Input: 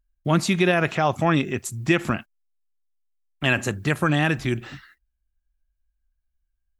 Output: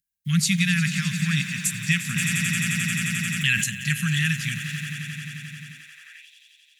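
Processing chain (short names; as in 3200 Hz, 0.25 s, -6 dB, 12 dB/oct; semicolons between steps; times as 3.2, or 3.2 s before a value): elliptic band-stop 160–1800 Hz, stop band 60 dB; high shelf 4000 Hz +11.5 dB; swelling echo 88 ms, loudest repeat 5, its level -14.5 dB; high-pass sweep 190 Hz -> 3400 Hz, 5.7–6.28; 2.16–3.64 fast leveller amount 70%; gain -1.5 dB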